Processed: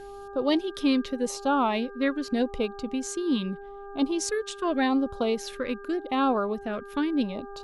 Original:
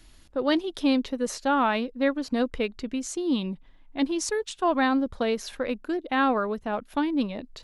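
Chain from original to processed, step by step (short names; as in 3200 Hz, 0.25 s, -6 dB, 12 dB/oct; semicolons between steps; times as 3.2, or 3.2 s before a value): buzz 400 Hz, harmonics 4, -41 dBFS -4 dB/oct; LFO notch sine 0.83 Hz 710–2000 Hz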